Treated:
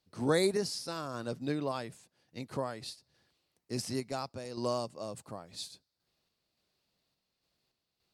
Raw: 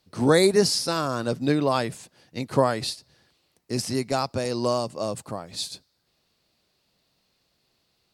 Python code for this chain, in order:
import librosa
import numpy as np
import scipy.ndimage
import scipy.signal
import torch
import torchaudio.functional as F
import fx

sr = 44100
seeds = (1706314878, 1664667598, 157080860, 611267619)

y = fx.tremolo_random(x, sr, seeds[0], hz=3.5, depth_pct=55)
y = y * 10.0 ** (-8.5 / 20.0)